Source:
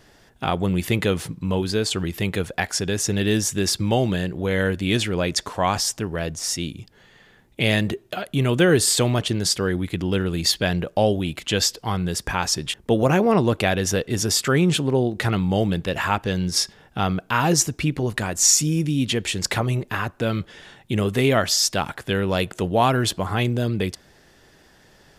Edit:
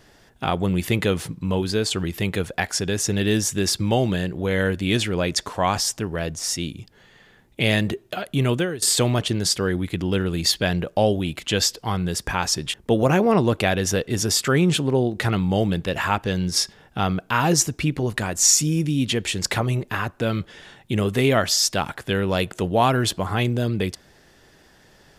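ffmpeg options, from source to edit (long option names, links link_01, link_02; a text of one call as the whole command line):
ffmpeg -i in.wav -filter_complex "[0:a]asplit=2[link_01][link_02];[link_01]atrim=end=8.82,asetpts=PTS-STARTPTS,afade=type=out:start_time=8.52:duration=0.3:curve=qua:silence=0.133352[link_03];[link_02]atrim=start=8.82,asetpts=PTS-STARTPTS,afade=type=in:duration=0.004:curve=hsin:silence=0.133352[link_04];[link_03][link_04]concat=n=2:v=0:a=1" out.wav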